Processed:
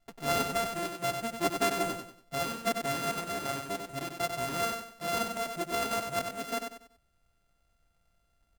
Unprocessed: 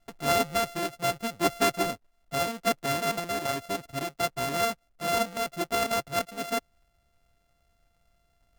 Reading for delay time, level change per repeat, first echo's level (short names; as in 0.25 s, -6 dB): 95 ms, -9.5 dB, -6.0 dB